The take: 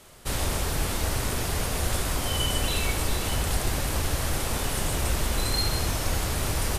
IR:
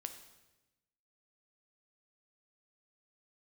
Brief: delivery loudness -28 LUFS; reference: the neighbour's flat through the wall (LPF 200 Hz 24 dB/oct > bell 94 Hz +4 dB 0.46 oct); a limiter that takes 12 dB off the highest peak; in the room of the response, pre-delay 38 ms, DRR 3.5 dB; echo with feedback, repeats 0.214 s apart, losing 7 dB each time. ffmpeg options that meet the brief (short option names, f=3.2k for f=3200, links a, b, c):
-filter_complex "[0:a]alimiter=level_in=0.5dB:limit=-24dB:level=0:latency=1,volume=-0.5dB,aecho=1:1:214|428|642|856|1070:0.447|0.201|0.0905|0.0407|0.0183,asplit=2[a][b];[1:a]atrim=start_sample=2205,adelay=38[c];[b][c]afir=irnorm=-1:irlink=0,volume=-0.5dB[d];[a][d]amix=inputs=2:normalize=0,lowpass=f=200:w=0.5412,lowpass=f=200:w=1.3066,equalizer=f=94:t=o:w=0.46:g=4,volume=7.5dB"